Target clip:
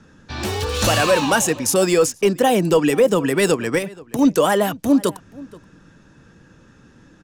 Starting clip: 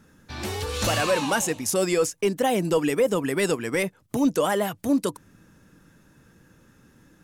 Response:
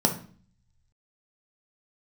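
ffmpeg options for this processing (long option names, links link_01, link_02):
-filter_complex "[0:a]bandreject=frequency=2100:width=16,acrossover=split=330|1200|7700[link_01][link_02][link_03][link_04];[link_04]aeval=exprs='val(0)*gte(abs(val(0)),0.00708)':channel_layout=same[link_05];[link_01][link_02][link_03][link_05]amix=inputs=4:normalize=0,asettb=1/sr,asplit=3[link_06][link_07][link_08];[link_06]atrim=end=3.784[link_09];[link_07]atrim=start=3.78:end=4.19,asetpts=PTS-STARTPTS,afade=type=in:duration=0.004:curve=qsin,afade=type=out:start_time=0.406:duration=0.004:curve=qsin,acompressor=threshold=-29dB:ratio=6[link_10];[link_08]atrim=start=4.186[link_11];[link_09][link_10]acrossfade=duration=0.004:curve1=hsin:curve2=qsin[link_12];[link_12][link_11]acrossfade=duration=0.004:curve1=qsin:curve2=hsin,asplit=2[link_13][link_14];[link_14]adelay=478.1,volume=-21dB,highshelf=frequency=4000:gain=-10.8[link_15];[link_13][link_15]amix=inputs=2:normalize=0,volume=6.5dB"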